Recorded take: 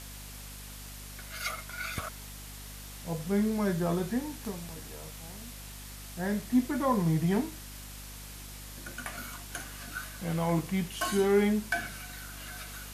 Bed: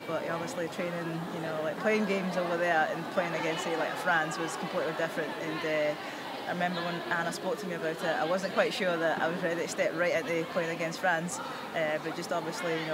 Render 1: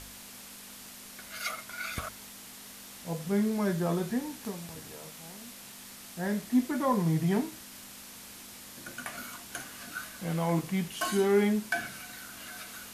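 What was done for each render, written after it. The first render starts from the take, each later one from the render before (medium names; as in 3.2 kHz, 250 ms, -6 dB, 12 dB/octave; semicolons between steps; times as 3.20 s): de-hum 50 Hz, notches 3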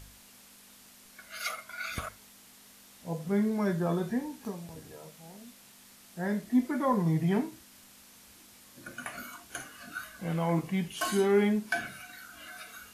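noise print and reduce 8 dB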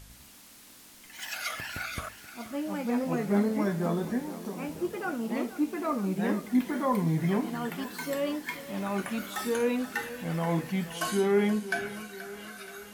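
ever faster or slower copies 99 ms, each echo +3 st, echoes 2; thinning echo 478 ms, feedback 64%, high-pass 150 Hz, level -14 dB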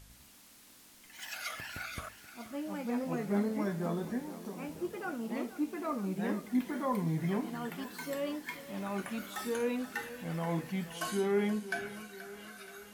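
trim -5.5 dB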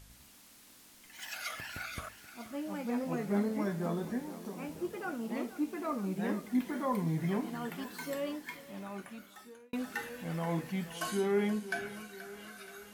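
8.10–9.73 s: fade out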